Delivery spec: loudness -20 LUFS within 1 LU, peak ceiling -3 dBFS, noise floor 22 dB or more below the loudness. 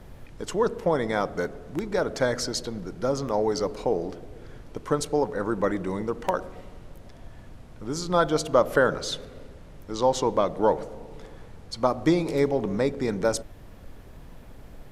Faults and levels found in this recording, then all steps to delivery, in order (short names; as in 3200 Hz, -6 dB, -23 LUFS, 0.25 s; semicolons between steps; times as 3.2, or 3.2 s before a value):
noise floor -46 dBFS; noise floor target -49 dBFS; loudness -26.5 LUFS; peak -5.0 dBFS; loudness target -20.0 LUFS
-> noise print and reduce 6 dB; gain +6.5 dB; limiter -3 dBFS